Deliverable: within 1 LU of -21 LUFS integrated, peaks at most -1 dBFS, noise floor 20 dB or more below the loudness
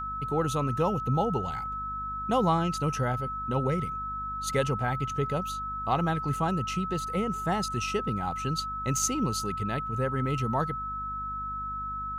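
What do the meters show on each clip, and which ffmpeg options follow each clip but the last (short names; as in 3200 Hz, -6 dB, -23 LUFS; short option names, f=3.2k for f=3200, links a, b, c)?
hum 50 Hz; harmonics up to 250 Hz; hum level -41 dBFS; steady tone 1300 Hz; tone level -32 dBFS; loudness -29.5 LUFS; peak -13.5 dBFS; loudness target -21.0 LUFS
-> -af "bandreject=f=50:t=h:w=6,bandreject=f=100:t=h:w=6,bandreject=f=150:t=h:w=6,bandreject=f=200:t=h:w=6,bandreject=f=250:t=h:w=6"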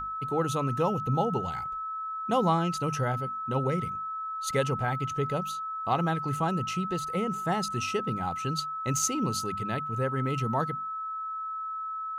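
hum none; steady tone 1300 Hz; tone level -32 dBFS
-> -af "bandreject=f=1.3k:w=30"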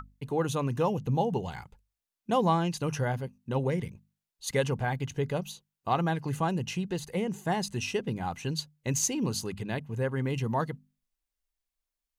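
steady tone none; loudness -31.0 LUFS; peak -14.0 dBFS; loudness target -21.0 LUFS
-> -af "volume=10dB"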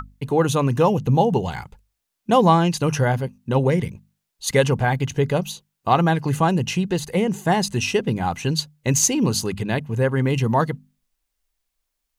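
loudness -21.0 LUFS; peak -4.0 dBFS; noise floor -79 dBFS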